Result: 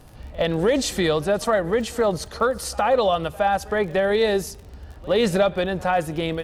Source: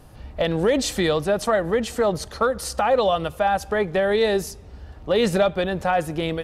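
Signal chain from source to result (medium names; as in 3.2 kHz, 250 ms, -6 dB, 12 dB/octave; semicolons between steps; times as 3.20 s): crackle 34 per s -35 dBFS; pre-echo 65 ms -22 dB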